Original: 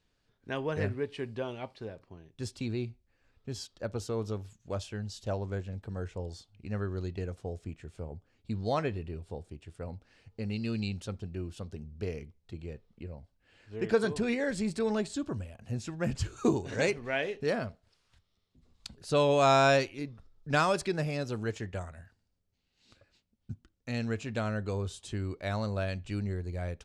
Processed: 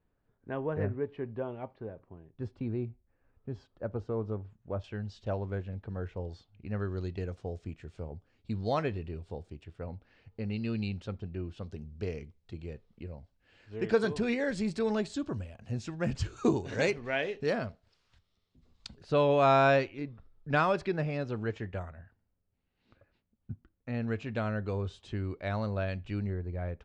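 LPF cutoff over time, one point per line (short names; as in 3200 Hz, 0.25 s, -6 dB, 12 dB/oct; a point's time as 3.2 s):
1300 Hz
from 4.84 s 2900 Hz
from 6.8 s 5500 Hz
from 9.64 s 3300 Hz
from 11.62 s 6200 Hz
from 19.03 s 2800 Hz
from 21.91 s 1800 Hz
from 24.08 s 3200 Hz
from 26.3 s 1900 Hz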